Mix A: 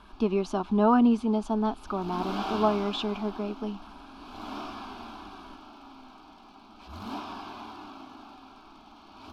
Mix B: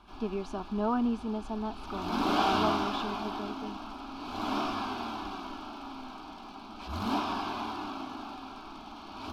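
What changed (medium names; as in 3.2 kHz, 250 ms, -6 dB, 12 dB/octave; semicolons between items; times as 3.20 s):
speech -8.0 dB; background +6.5 dB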